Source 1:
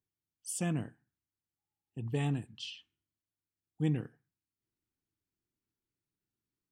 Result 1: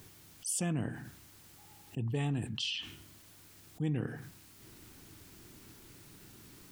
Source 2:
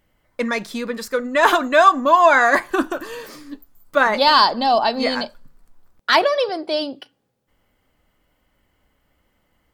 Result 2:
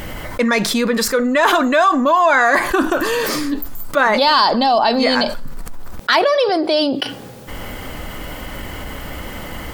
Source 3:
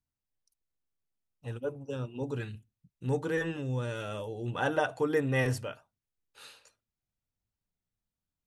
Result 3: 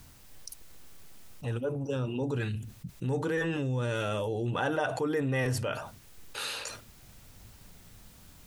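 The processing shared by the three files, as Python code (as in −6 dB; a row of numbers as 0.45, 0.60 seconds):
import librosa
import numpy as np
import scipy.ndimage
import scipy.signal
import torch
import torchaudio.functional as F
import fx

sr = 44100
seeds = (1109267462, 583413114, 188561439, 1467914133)

y = fx.env_flatten(x, sr, amount_pct=70)
y = F.gain(torch.from_numpy(y), -3.5).numpy()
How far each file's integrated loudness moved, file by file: 0.0, +1.5, +1.0 LU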